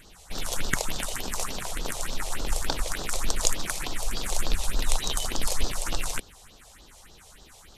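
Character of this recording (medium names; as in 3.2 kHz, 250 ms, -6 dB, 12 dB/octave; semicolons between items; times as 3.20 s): phasing stages 4, 3.4 Hz, lowest notch 240–2200 Hz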